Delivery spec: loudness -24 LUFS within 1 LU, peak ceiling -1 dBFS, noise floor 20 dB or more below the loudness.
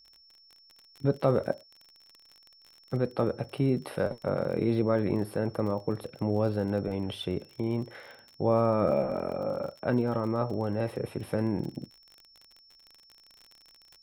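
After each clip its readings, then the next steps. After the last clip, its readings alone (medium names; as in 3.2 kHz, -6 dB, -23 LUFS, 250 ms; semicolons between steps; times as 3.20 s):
tick rate 38 per s; steady tone 5.4 kHz; tone level -56 dBFS; loudness -30.0 LUFS; peak level -12.0 dBFS; loudness target -24.0 LUFS
-> de-click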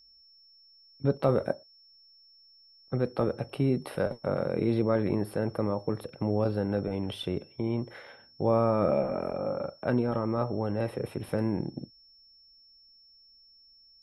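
tick rate 0 per s; steady tone 5.4 kHz; tone level -56 dBFS
-> band-stop 5.4 kHz, Q 30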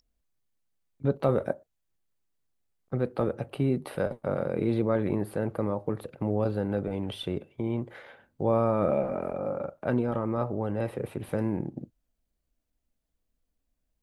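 steady tone not found; loudness -30.0 LUFS; peak level -12.0 dBFS; loudness target -24.0 LUFS
-> trim +6 dB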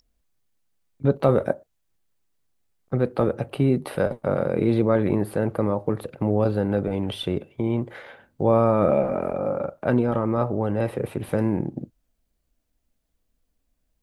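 loudness -24.0 LUFS; peak level -6.0 dBFS; noise floor -74 dBFS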